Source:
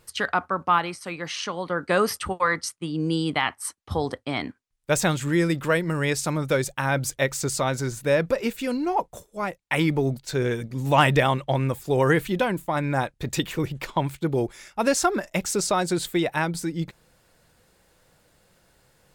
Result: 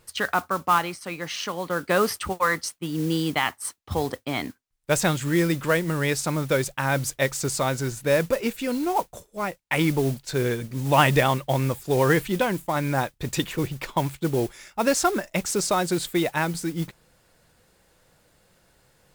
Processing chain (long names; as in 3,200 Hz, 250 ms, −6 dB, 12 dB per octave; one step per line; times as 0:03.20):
noise that follows the level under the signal 18 dB